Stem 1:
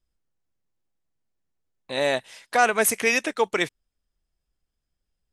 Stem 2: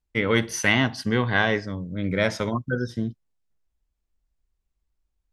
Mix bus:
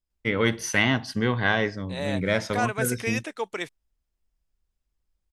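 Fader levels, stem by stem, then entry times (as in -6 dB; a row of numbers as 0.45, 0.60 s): -8.0, -1.5 dB; 0.00, 0.10 s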